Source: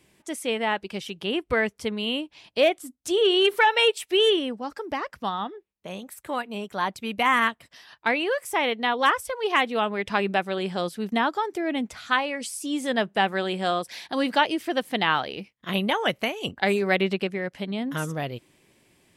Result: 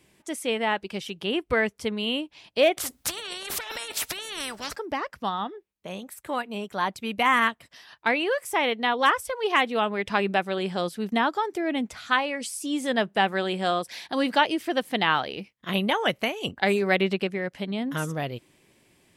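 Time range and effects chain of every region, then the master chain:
2.77–4.76 s: compressor with a negative ratio -28 dBFS + spectrum-flattening compressor 4:1
whole clip: none

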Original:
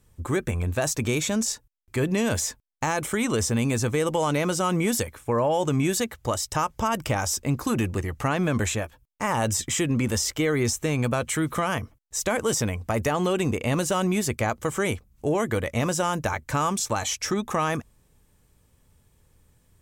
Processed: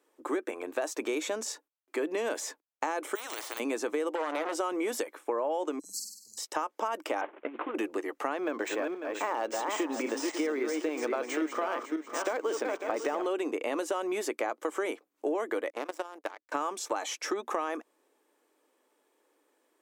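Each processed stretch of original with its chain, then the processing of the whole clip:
3.15–3.60 s: de-esser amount 90% + band-stop 4.9 kHz, Q 19 + spectrum-flattening compressor 10:1
4.15–4.55 s: hum notches 50/100/150/200/250 Hz + transformer saturation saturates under 1.7 kHz
5.79–6.38 s: brick-wall FIR band-stop 200–4000 Hz + dynamic bell 150 Hz, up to -5 dB, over -42 dBFS, Q 1.5 + flutter echo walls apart 8.5 m, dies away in 0.71 s
7.21–7.75 s: CVSD coder 16 kbps + compressor with a negative ratio -28 dBFS, ratio -0.5
8.40–13.26 s: backward echo that repeats 274 ms, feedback 41%, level -5 dB + decimation joined by straight lines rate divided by 3×
15.70–16.52 s: band-stop 6.1 kHz, Q 19 + power-law waveshaper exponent 2 + level held to a coarse grid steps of 15 dB
whole clip: elliptic high-pass 300 Hz, stop band 50 dB; peaking EQ 13 kHz -11 dB 2.8 oct; compression, threshold -29 dBFS; trim +1.5 dB

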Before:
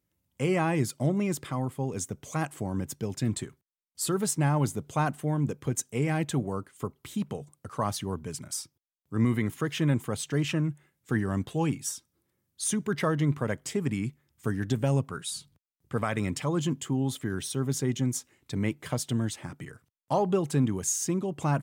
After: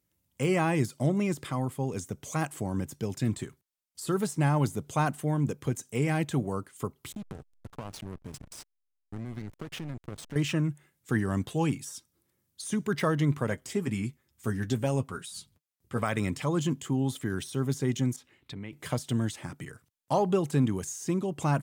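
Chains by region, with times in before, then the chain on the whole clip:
7.12–10.36 s: treble shelf 10 kHz -3.5 dB + compression, threshold -33 dBFS + hysteresis with a dead band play -33 dBFS
13.50–16.02 s: de-esser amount 35% + comb of notches 150 Hz
18.16–18.73 s: compression 4:1, threshold -38 dBFS + resonant high shelf 4.7 kHz -10.5 dB, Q 1.5
whole clip: de-esser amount 90%; peaking EQ 11 kHz +4.5 dB 2.5 oct

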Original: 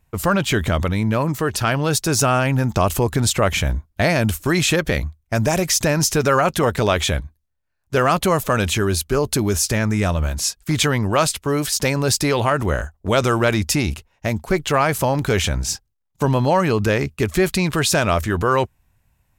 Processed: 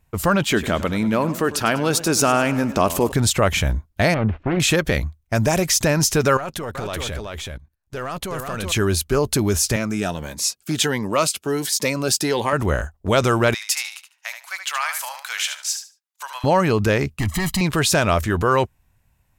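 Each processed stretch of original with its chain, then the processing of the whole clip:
0.43–3.12 s: resonant low shelf 160 Hz -7.5 dB, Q 1.5 + modulated delay 100 ms, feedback 54%, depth 110 cents, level -15 dB
4.14–4.60 s: self-modulated delay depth 0.48 ms + de-esser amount 85% + low-pass 2.7 kHz 24 dB/octave
6.37–8.72 s: partial rectifier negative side -3 dB + level held to a coarse grid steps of 14 dB + delay 377 ms -3.5 dB
9.76–12.53 s: high-pass 200 Hz + Shepard-style phaser rising 1.4 Hz
13.54–16.44 s: Bessel high-pass 1.5 kHz, order 6 + feedback delay 74 ms, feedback 20%, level -8 dB
17.19–17.61 s: peaking EQ 400 Hz -10 dB 0.36 oct + hard clipper -21.5 dBFS + comb 1 ms, depth 94%
whole clip: none

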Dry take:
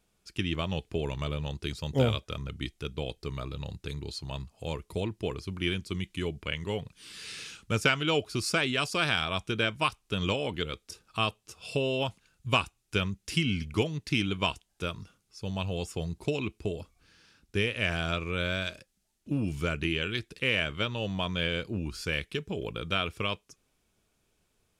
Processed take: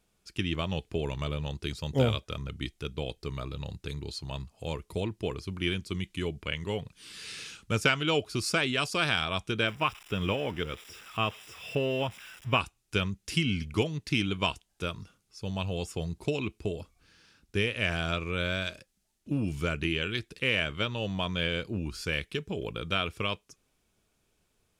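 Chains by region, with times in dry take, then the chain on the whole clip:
9.67–12.60 s: zero-crossing glitches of -27 dBFS + Savitzky-Golay filter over 25 samples
whole clip: none

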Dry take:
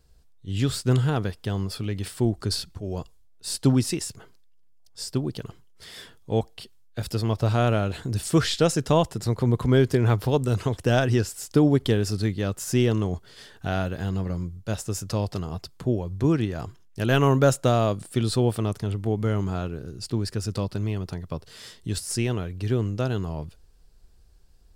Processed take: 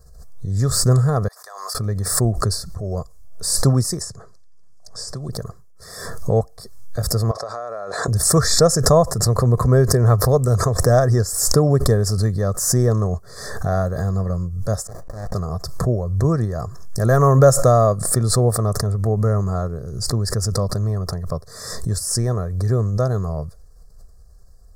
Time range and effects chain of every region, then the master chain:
1.28–1.75 s: high-pass 800 Hz 24 dB/octave + compression, threshold -54 dBFS
4.02–5.29 s: low-pass 8.1 kHz + three bands compressed up and down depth 70%
7.31–8.08 s: band-pass 550–5700 Hz + compression 10:1, threshold -31 dBFS
14.87–15.34 s: high-pass 910 Hz 24 dB/octave + distance through air 50 m + sliding maximum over 33 samples
whole clip: Chebyshev band-stop 1.4–5.6 kHz, order 2; comb 1.7 ms, depth 66%; swell ahead of each attack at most 54 dB/s; trim +5 dB

